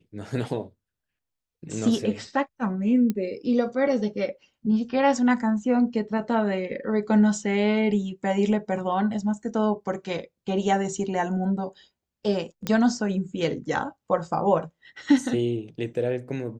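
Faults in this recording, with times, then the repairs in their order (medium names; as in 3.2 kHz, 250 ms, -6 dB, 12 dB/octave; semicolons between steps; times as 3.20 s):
3.10 s: pop -14 dBFS
12.67 s: pop -12 dBFS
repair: de-click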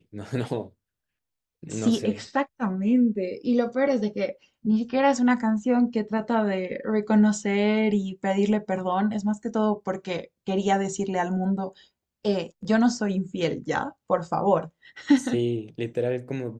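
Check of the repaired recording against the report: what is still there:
nothing left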